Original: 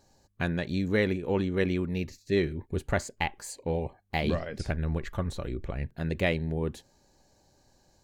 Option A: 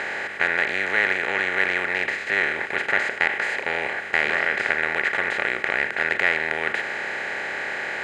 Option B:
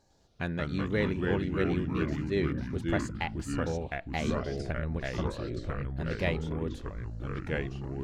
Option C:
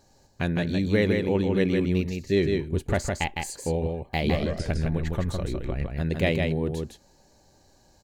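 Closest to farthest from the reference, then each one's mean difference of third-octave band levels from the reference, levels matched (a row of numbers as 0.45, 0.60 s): C, B, A; 5.0, 7.0, 13.0 dB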